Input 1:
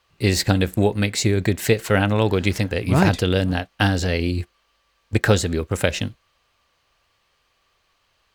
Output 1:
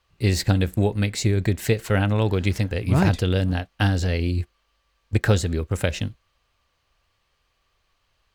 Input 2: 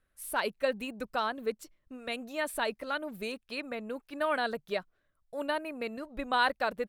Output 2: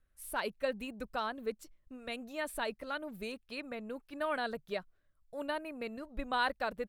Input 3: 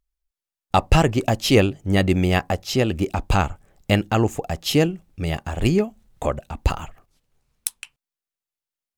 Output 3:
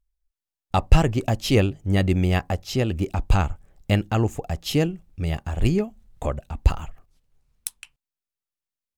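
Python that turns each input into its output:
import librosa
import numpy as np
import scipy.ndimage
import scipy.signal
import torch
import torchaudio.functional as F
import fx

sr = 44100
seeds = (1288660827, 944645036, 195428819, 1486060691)

y = fx.low_shelf(x, sr, hz=110.0, db=10.5)
y = y * librosa.db_to_amplitude(-5.0)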